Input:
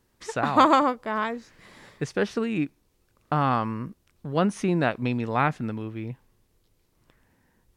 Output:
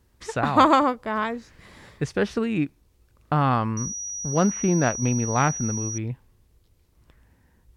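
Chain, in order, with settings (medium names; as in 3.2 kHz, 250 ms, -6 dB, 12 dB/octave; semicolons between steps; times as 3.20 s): peaking EQ 62 Hz +13 dB 1.4 oct; 3.77–5.98 s: class-D stage that switches slowly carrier 5.8 kHz; trim +1 dB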